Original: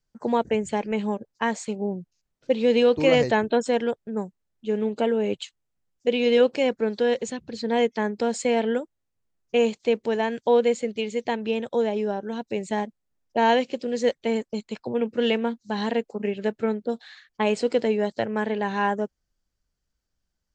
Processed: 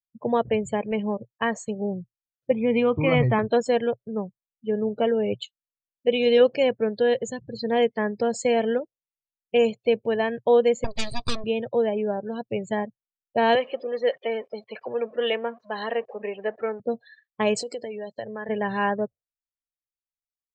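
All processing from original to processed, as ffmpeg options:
-filter_complex "[0:a]asettb=1/sr,asplit=3[s0][s1][s2];[s0]atrim=end=2.514[s3];[s1]atrim=start=2.51:end=3.39,asetpts=PTS-STARTPTS,afade=t=in:d=0.004:c=qsin,afade=t=out:st=0.876:d=0.004:c=qsin,lowpass=2500,aecho=1:1:0.9:0.57,atrim=end_sample=38808[s4];[s2]atrim=start=3.386[s5];[s3][s4]acrossfade=d=0.004:c1=hsin:c2=qsin[s6];[s6][s5]acrossfade=d=0.004:c1=qsin:c2=hsin,asettb=1/sr,asplit=3[s7][s8][s9];[s7]atrim=end=10.844[s10];[s8]atrim=start=10.84:end=11.44,asetpts=PTS-STARTPTS,afade=t=in:d=0.004:c=qsin,afade=t=out:st=0.596:d=0.004:c=qsin,lowpass=f=4300:t=q:w=8.9,aeval=exprs='abs(val(0))':c=same[s11];[s9]atrim=start=11.436[s12];[s10][s11]acrossfade=d=0.004:c1=hsin:c2=qsin[s13];[s13][s12]acrossfade=d=0.004:c1=qsin:c2=hsin,asettb=1/sr,asplit=3[s14][s15][s16];[s14]atrim=end=13.554[s17];[s15]atrim=start=13.55:end=16.8,asetpts=PTS-STARTPTS,afade=t=in:d=0.004:c=qsin,afade=t=out:st=3.246:d=0.004:c=qsin,aeval=exprs='val(0)+0.5*0.0188*sgn(val(0))':c=same,highpass=460,lowpass=3400[s18];[s16]atrim=start=16.796[s19];[s17][s18]acrossfade=d=0.004:c1=hsin:c2=qsin[s20];[s20][s19]acrossfade=d=0.004:c1=qsin:c2=hsin,asettb=1/sr,asplit=3[s21][s22][s23];[s21]atrim=end=17.564[s24];[s22]atrim=start=17.56:end=18.49,asetpts=PTS-STARTPTS,afade=t=in:d=0.004:c=qsin,afade=t=out:st=0.926:d=0.004:c=qsin,acompressor=threshold=0.0447:ratio=10:attack=3.2:release=140:knee=1:detection=peak,aemphasis=mode=production:type=bsi[s25];[s23]atrim=start=18.486[s26];[s24][s25]acrossfade=d=0.004:c1=hsin:c2=qsin[s27];[s27][s26]acrossfade=d=0.004:c1=qsin:c2=hsin,equalizer=f=120:t=o:w=0.5:g=11,afftdn=nr=35:nf=-38,aecho=1:1:1.7:0.34"

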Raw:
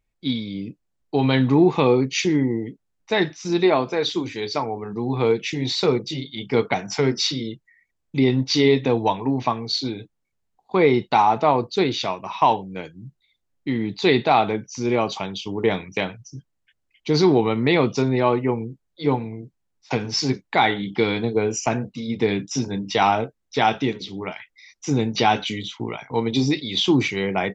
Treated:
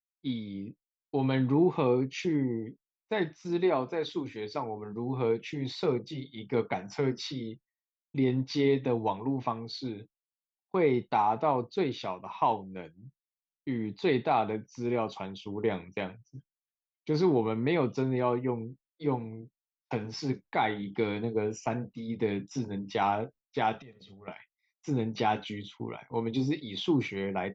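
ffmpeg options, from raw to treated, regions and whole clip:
-filter_complex "[0:a]asettb=1/sr,asplit=3[s0][s1][s2];[s0]atrim=end=23.794[s3];[s1]atrim=start=23.79:end=24.28,asetpts=PTS-STARTPTS,afade=t=in:d=0.004:c=qsin,afade=t=out:st=0.486:d=0.004:c=qsin,acompressor=threshold=0.02:ratio=16:attack=3.2:release=140:knee=1:detection=peak,aecho=1:1:1.6:0.69,atrim=end_sample=21609[s4];[s2]atrim=start=24.276[s5];[s3][s4]acrossfade=d=0.004:c1=hsin:c2=qsin[s6];[s6][s5]acrossfade=d=0.004:c1=qsin:c2=hsin,agate=range=0.0224:threshold=0.0178:ratio=3:detection=peak,highshelf=f=3200:g=-12,volume=0.376"

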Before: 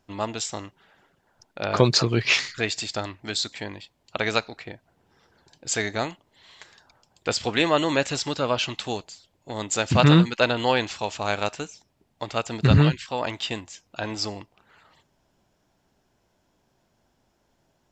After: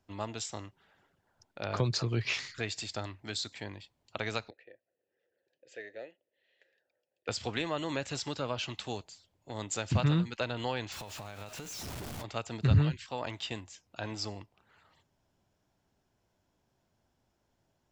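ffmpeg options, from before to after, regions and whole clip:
-filter_complex "[0:a]asettb=1/sr,asplit=3[s0][s1][s2];[s0]atrim=end=4.504[s3];[s1]atrim=start=4.5:end=7.28,asetpts=PTS-STARTPTS,afade=t=in:d=0.004:c=qsin,afade=t=out:st=2.776:d=0.004:c=qsin,asplit=3[s4][s5][s6];[s4]bandpass=f=530:t=q:w=8,volume=1[s7];[s5]bandpass=f=1840:t=q:w=8,volume=0.501[s8];[s6]bandpass=f=2480:t=q:w=8,volume=0.355[s9];[s7][s8][s9]amix=inputs=3:normalize=0,equalizer=f=350:w=2.3:g=5[s10];[s2]atrim=start=7.276[s11];[s3][s10]acrossfade=d=0.004:c1=hsin:c2=qsin[s12];[s12][s11]acrossfade=d=0.004:c1=qsin:c2=hsin,asettb=1/sr,asplit=3[s13][s14][s15];[s13]atrim=end=10.924[s16];[s14]atrim=start=10.92:end=12.24,asetpts=PTS-STARTPTS,afade=t=in:d=0.004:c=qsin,afade=t=out:st=1.316:d=0.004:c=qsin,aeval=exprs='val(0)+0.5*0.0422*sgn(val(0))':c=same,acompressor=threshold=0.0251:ratio=16:attack=3.2:release=140:knee=1:detection=peak[s17];[s15]atrim=start=12.236[s18];[s16][s17]acrossfade=d=0.004:c1=hsin:c2=qsin[s19];[s19][s18]acrossfade=d=0.004:c1=qsin:c2=hsin,equalizer=f=92:w=1.6:g=5.5,acrossover=split=140[s20][s21];[s21]acompressor=threshold=0.0794:ratio=3[s22];[s20][s22]amix=inputs=2:normalize=0,volume=0.376"

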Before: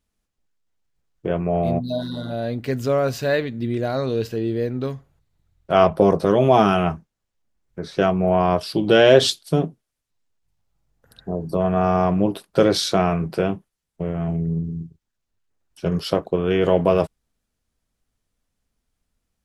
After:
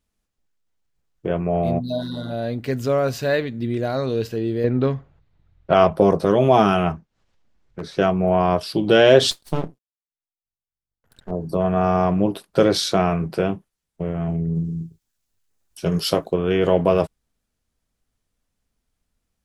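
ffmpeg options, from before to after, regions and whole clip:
-filter_complex "[0:a]asettb=1/sr,asplit=3[s0][s1][s2];[s0]atrim=end=4.644[s3];[s1]atrim=start=4.64:end=5.74,asetpts=PTS-STARTPTS,afade=t=in:d=0.004:c=qsin,afade=t=out:st=1.096:d=0.004:c=qsin,lowpass=3200,acontrast=60[s4];[s2]atrim=start=5.736[s5];[s3][s4]acrossfade=d=0.004:c1=hsin:c2=qsin[s6];[s6][s5]acrossfade=d=0.004:c1=qsin:c2=hsin,asettb=1/sr,asplit=3[s7][s8][s9];[s7]atrim=end=6.924[s10];[s8]atrim=start=6.92:end=7.82,asetpts=PTS-STARTPTS,afade=t=in:d=0.004:c=qsin,afade=t=out:st=0.896:d=0.004:c=qsin,lowpass=5000,aeval=exprs='0.0841*(abs(mod(val(0)/0.0841+3,4)-2)-1)':c=same,acompressor=mode=upward:threshold=0.00251:ratio=2.5:attack=3.2:release=140:knee=2.83:detection=peak[s11];[s9]atrim=start=7.816[s12];[s10][s11]acrossfade=d=0.004:c1=hsin:c2=qsin[s13];[s13][s12]acrossfade=d=0.004:c1=qsin:c2=hsin,asettb=1/sr,asplit=3[s14][s15][s16];[s14]atrim=end=9.314[s17];[s15]atrim=start=9.31:end=11.31,asetpts=PTS-STARTPTS,afade=t=in:d=0.004:c=qsin,afade=t=out:st=1.996:d=0.004:c=qsin,agate=range=0.0224:threshold=0.002:ratio=3:release=100:detection=peak,aeval=exprs='max(val(0),0)':c=same[s18];[s16]atrim=start=11.306[s19];[s17][s18]acrossfade=d=0.004:c1=hsin:c2=qsin[s20];[s20][s19]acrossfade=d=0.004:c1=qsin:c2=hsin,asettb=1/sr,asplit=3[s21][s22][s23];[s21]atrim=end=14.554[s24];[s22]atrim=start=14.55:end=16.34,asetpts=PTS-STARTPTS,afade=t=in:d=0.004:c=qsin,afade=t=out:st=1.786:d=0.004:c=qsin,highshelf=f=4300:g=11.5,asplit=2[s25][s26];[s26]adelay=18,volume=0.251[s27];[s25][s27]amix=inputs=2:normalize=0,atrim=end_sample=78939[s28];[s23]atrim=start=16.336[s29];[s24][s28]acrossfade=d=0.004:c1=hsin:c2=qsin[s30];[s30][s29]acrossfade=d=0.004:c1=qsin:c2=hsin"

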